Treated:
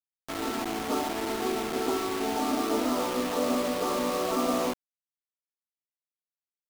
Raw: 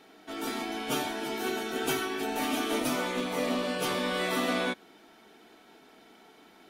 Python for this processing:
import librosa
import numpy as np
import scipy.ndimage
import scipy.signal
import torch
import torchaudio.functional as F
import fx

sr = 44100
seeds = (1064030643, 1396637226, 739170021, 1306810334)

y = fx.brickwall_bandpass(x, sr, low_hz=190.0, high_hz=1400.0)
y = fx.quant_dither(y, sr, seeds[0], bits=6, dither='none')
y = F.gain(torch.from_numpy(y), 3.0).numpy()